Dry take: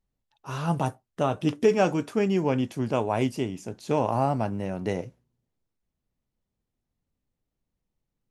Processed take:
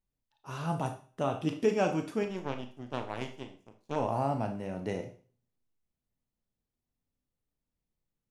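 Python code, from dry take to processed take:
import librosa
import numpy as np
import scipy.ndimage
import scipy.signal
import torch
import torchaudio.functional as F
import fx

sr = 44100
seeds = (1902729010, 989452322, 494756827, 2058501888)

y = fx.power_curve(x, sr, exponent=2.0, at=(2.23, 3.96))
y = fx.rev_schroeder(y, sr, rt60_s=0.41, comb_ms=25, drr_db=6.0)
y = F.gain(torch.from_numpy(y), -6.5).numpy()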